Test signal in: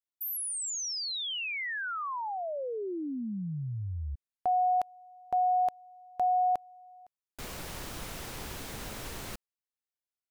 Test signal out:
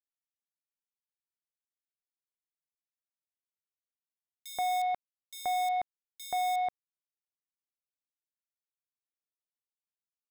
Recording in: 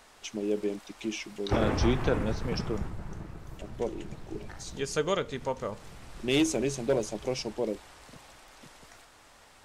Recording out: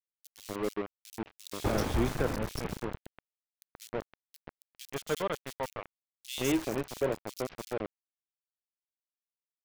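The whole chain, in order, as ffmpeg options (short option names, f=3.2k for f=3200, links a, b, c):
-filter_complex "[0:a]aeval=exprs='val(0)*gte(abs(val(0)),0.0398)':c=same,acrossover=split=3100[a][b];[a]adelay=130[c];[c][b]amix=inputs=2:normalize=0,volume=-3dB"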